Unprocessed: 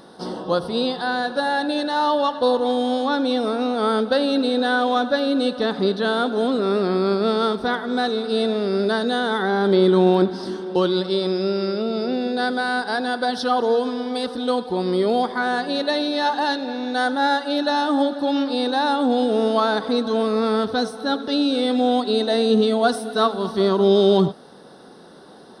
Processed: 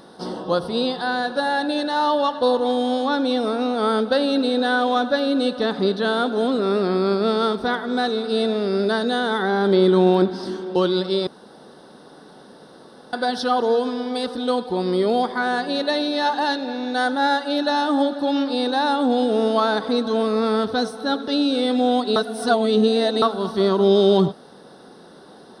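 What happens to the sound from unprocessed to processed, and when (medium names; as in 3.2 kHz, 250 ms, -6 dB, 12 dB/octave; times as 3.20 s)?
11.27–13.13 s: room tone
22.16–23.22 s: reverse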